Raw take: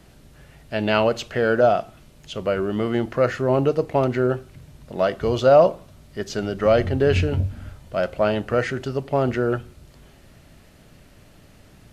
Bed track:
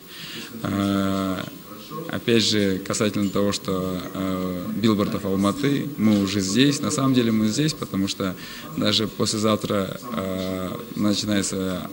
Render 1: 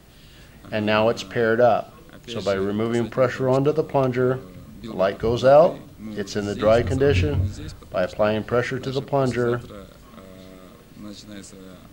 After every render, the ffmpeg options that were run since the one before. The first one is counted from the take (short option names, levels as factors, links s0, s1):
-filter_complex "[1:a]volume=0.141[s0];[0:a][s0]amix=inputs=2:normalize=0"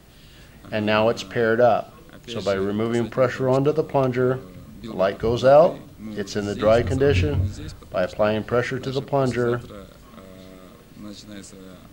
-af anull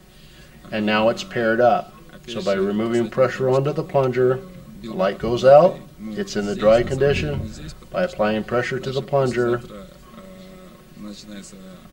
-af "bandreject=f=880:w=18,aecho=1:1:5.4:0.67"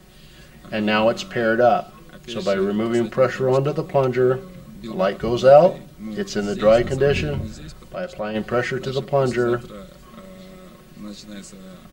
-filter_complex "[0:a]asettb=1/sr,asplit=3[s0][s1][s2];[s0]atrim=end=5.464[s3];[s1]atrim=start=5.46:end=5.92,asetpts=PTS-STARTPTS,afade=t=in:d=0.004:c=qsin,afade=t=out:st=0.456:d=0.004:c=qsin,bandreject=f=1100:w=11[s4];[s2]atrim=start=5.916[s5];[s3][s4]acrossfade=d=0.004:c1=hsin:c2=qsin[s6];[s6][s5]acrossfade=d=0.004:c1=qsin:c2=hsin,asplit=3[s7][s8][s9];[s7]afade=t=out:st=7.53:d=0.02[s10];[s8]acompressor=threshold=0.0158:ratio=1.5:attack=3.2:release=140:knee=1:detection=peak,afade=t=in:st=7.53:d=0.02,afade=t=out:st=8.34:d=0.02[s11];[s9]afade=t=in:st=8.34:d=0.02[s12];[s10][s11][s12]amix=inputs=3:normalize=0"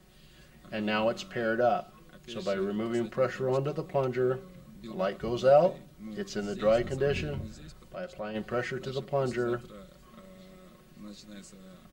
-af "volume=0.316"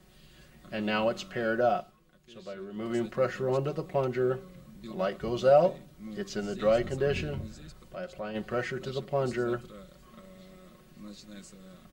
-filter_complex "[0:a]asplit=3[s0][s1][s2];[s0]atrim=end=1.97,asetpts=PTS-STARTPTS,afade=t=out:st=1.76:d=0.21:silence=0.298538[s3];[s1]atrim=start=1.97:end=2.71,asetpts=PTS-STARTPTS,volume=0.299[s4];[s2]atrim=start=2.71,asetpts=PTS-STARTPTS,afade=t=in:d=0.21:silence=0.298538[s5];[s3][s4][s5]concat=n=3:v=0:a=1"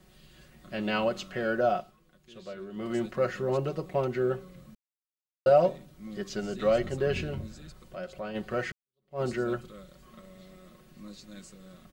-filter_complex "[0:a]asplit=4[s0][s1][s2][s3];[s0]atrim=end=4.75,asetpts=PTS-STARTPTS,afade=t=out:st=4.746:d=0.004:c=hsin[s4];[s1]atrim=start=4.75:end=5.46,asetpts=PTS-STARTPTS,volume=0[s5];[s2]atrim=start=5.46:end=8.72,asetpts=PTS-STARTPTS,afade=t=in:d=0.004:c=hsin,afade=t=out:st=3.256:d=0.004:c=hsin[s6];[s3]atrim=start=8.72,asetpts=PTS-STARTPTS,afade=t=in:d=0.49:c=exp[s7];[s4][s5][s6][s7]concat=n=4:v=0:a=1"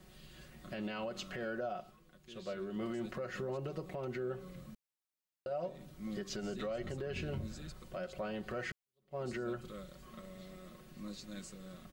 -af "acompressor=threshold=0.0316:ratio=10,alimiter=level_in=2.11:limit=0.0631:level=0:latency=1:release=156,volume=0.473"